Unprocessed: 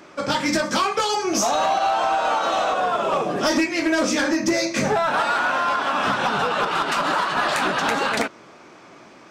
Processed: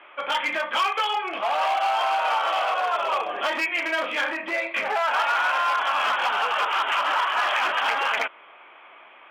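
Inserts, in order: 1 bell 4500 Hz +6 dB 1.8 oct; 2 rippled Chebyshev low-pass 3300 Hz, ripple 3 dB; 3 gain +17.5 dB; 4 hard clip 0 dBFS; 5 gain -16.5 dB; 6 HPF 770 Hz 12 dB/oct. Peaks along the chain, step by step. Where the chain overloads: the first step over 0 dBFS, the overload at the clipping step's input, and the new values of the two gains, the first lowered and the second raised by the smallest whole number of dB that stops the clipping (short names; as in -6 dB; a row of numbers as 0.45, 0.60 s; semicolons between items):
-9.0, -10.5, +7.0, 0.0, -16.5, -12.0 dBFS; step 3, 7.0 dB; step 3 +10.5 dB, step 5 -9.5 dB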